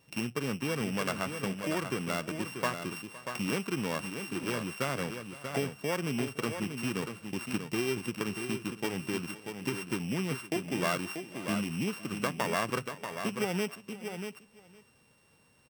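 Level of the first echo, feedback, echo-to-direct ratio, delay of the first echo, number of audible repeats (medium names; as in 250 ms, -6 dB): -18.5 dB, no regular repeats, -7.0 dB, 513 ms, 3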